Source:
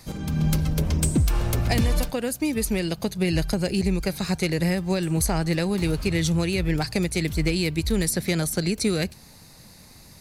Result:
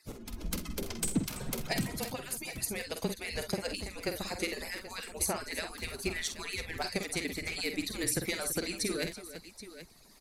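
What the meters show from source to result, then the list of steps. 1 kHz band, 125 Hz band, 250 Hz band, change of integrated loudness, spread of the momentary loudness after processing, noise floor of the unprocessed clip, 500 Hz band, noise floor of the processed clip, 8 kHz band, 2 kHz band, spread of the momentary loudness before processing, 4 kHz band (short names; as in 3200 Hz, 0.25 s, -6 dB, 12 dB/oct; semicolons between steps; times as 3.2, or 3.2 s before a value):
-8.0 dB, -18.5 dB, -14.0 dB, -10.5 dB, 10 LU, -49 dBFS, -10.5 dB, -56 dBFS, -5.0 dB, -6.0 dB, 3 LU, -6.0 dB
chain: median-filter separation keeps percussive; frequency shift -30 Hz; tapped delay 48/63/332/779 ms -8/-14.5/-14/-14 dB; gain -6 dB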